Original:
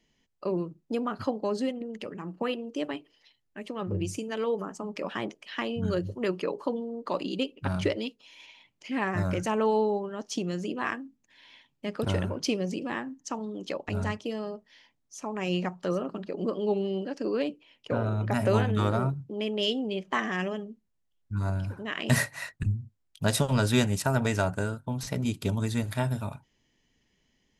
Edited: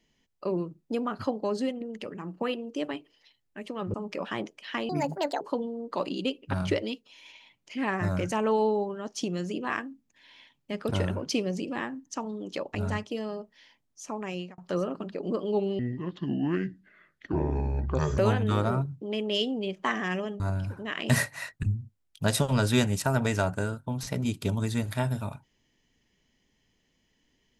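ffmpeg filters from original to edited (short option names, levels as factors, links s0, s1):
-filter_complex "[0:a]asplit=8[s0][s1][s2][s3][s4][s5][s6][s7];[s0]atrim=end=3.942[s8];[s1]atrim=start=4.778:end=5.734[s9];[s2]atrim=start=5.73:end=6.55,asetpts=PTS-STARTPTS,asetrate=69678,aresample=44100,atrim=end_sample=22887,asetpts=PTS-STARTPTS[s10];[s3]atrim=start=6.546:end=15.72,asetpts=PTS-STARTPTS,afade=t=out:st=8.734:d=0.44[s11];[s4]atrim=start=15.72:end=16.934,asetpts=PTS-STARTPTS,afade=t=in:d=0.004:c=hsin[s12];[s5]atrim=start=16.93:end=18.46,asetpts=PTS-STARTPTS,asetrate=28224,aresample=44100[s13];[s6]atrim=start=18.456:end=20.682[s14];[s7]atrim=start=21.398[s15];[s8][s9]acrossfade=d=0.004:c1=hsin:c2=hsin[s16];[s16][s10]acrossfade=d=0.004:c1=hsin:c2=hsin[s17];[s11][s12]concat=n=2:v=0:a=1[s18];[s17][s18]acrossfade=d=0.004:c1=hsin:c2=hsin[s19];[s19][s13]acrossfade=d=0.004:c1=hsin:c2=hsin[s20];[s20][s14]acrossfade=d=0.004:c1=hsin:c2=hsin[s21];[s21][s15]acrossfade=d=0.004:c1=hsin:c2=hsin"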